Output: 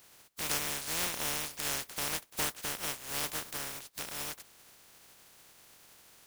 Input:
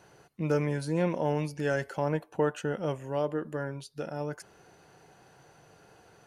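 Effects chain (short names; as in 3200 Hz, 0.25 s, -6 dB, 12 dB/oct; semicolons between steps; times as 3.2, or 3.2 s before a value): spectral contrast lowered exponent 0.12; in parallel at +2 dB: compressor, threshold -40 dBFS, peak gain reduction 16.5 dB; on the sum: gain -7.5 dB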